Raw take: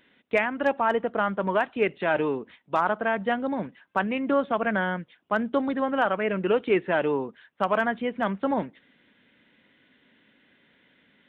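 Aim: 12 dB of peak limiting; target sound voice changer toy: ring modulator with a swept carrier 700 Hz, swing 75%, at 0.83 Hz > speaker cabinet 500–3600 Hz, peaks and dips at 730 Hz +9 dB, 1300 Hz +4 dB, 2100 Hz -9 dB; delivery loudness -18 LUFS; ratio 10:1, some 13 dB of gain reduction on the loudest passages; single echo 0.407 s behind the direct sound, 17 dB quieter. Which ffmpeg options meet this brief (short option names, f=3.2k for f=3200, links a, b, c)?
-af "acompressor=threshold=-31dB:ratio=10,alimiter=level_in=6.5dB:limit=-24dB:level=0:latency=1,volume=-6.5dB,aecho=1:1:407:0.141,aeval=exprs='val(0)*sin(2*PI*700*n/s+700*0.75/0.83*sin(2*PI*0.83*n/s))':c=same,highpass=500,equalizer=f=730:t=q:w=4:g=9,equalizer=f=1.3k:t=q:w=4:g=4,equalizer=f=2.1k:t=q:w=4:g=-9,lowpass=f=3.6k:w=0.5412,lowpass=f=3.6k:w=1.3066,volume=24dB"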